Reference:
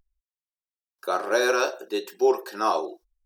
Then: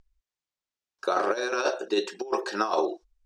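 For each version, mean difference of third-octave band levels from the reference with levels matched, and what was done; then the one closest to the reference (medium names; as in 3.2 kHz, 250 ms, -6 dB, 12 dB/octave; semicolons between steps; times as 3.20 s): 6.5 dB: low-pass 7.4 kHz 24 dB/octave; compressor with a negative ratio -26 dBFS, ratio -0.5; trim +1.5 dB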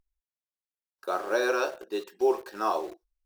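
2.5 dB: treble shelf 3.9 kHz -7.5 dB; in parallel at -8 dB: bit crusher 6-bit; on the sum: trim -6.5 dB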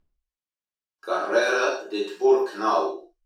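4.5 dB: distance through air 64 m; gated-style reverb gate 180 ms falling, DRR -5 dB; trim -4.5 dB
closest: second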